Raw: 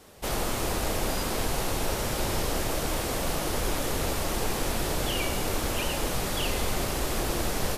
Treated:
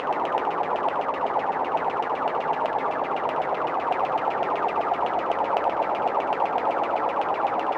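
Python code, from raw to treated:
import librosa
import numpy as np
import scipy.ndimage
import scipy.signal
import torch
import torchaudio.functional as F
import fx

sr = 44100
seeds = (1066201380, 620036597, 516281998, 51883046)

p1 = scipy.signal.medfilt(x, 5)
p2 = fx.peak_eq(p1, sr, hz=1900.0, db=-11.5, octaves=2.6)
p3 = fx.paulstretch(p2, sr, seeds[0], factor=34.0, window_s=0.25, from_s=3.9)
p4 = fx.filter_lfo_lowpass(p3, sr, shape='saw_down', hz=7.9, low_hz=660.0, high_hz=2900.0, q=6.7)
p5 = 10.0 ** (-30.0 / 20.0) * (np.abs((p4 / 10.0 ** (-30.0 / 20.0) + 3.0) % 4.0 - 2.0) - 1.0)
p6 = p4 + (p5 * librosa.db_to_amplitude(-11.0))
p7 = scipy.signal.sosfilt(scipy.signal.butter(2, 300.0, 'highpass', fs=sr, output='sos'), p6)
p8 = fx.peak_eq(p7, sr, hz=930.0, db=12.5, octaves=1.4)
p9 = p8 + fx.echo_single(p8, sr, ms=72, db=-9.0, dry=0)
y = p9 * librosa.db_to_amplitude(-1.0)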